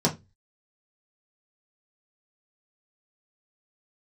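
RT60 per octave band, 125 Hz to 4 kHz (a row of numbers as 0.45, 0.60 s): 0.40, 0.30, 0.25, 0.20, 0.20, 0.20 s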